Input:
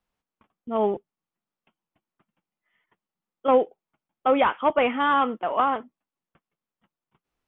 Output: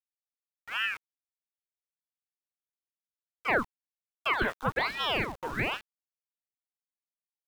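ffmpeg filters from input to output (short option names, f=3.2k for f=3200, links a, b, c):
-af "aeval=exprs='val(0)*gte(abs(val(0)),0.0188)':c=same,aeval=exprs='val(0)*sin(2*PI*1200*n/s+1200*0.85/1.2*sin(2*PI*1.2*n/s))':c=same,volume=-5.5dB"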